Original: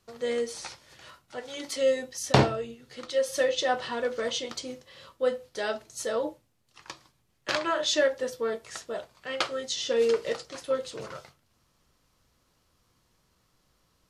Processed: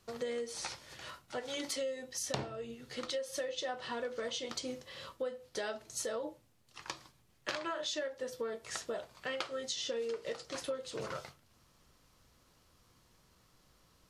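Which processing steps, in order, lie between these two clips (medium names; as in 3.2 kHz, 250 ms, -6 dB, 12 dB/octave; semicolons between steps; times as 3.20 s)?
compression 10:1, threshold -37 dBFS, peak gain reduction 22 dB; trim +2 dB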